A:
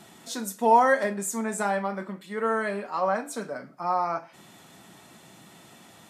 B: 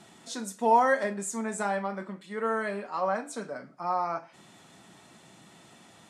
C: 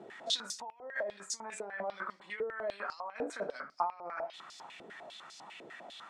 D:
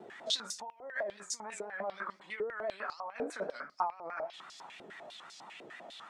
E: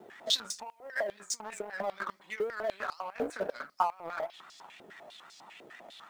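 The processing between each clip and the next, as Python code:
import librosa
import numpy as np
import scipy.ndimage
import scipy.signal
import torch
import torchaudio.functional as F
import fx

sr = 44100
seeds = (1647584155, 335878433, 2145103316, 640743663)

y1 = scipy.signal.sosfilt(scipy.signal.butter(4, 10000.0, 'lowpass', fs=sr, output='sos'), x)
y1 = F.gain(torch.from_numpy(y1), -3.0).numpy()
y2 = fx.over_compress(y1, sr, threshold_db=-38.0, ratio=-1.0)
y2 = fx.filter_held_bandpass(y2, sr, hz=10.0, low_hz=460.0, high_hz=5000.0)
y2 = F.gain(torch.from_numpy(y2), 8.5).numpy()
y3 = fx.vibrato(y2, sr, rate_hz=6.1, depth_cents=80.0)
y4 = fx.law_mismatch(y3, sr, coded='A')
y4 = F.gain(torch.from_numpy(y4), 5.5).numpy()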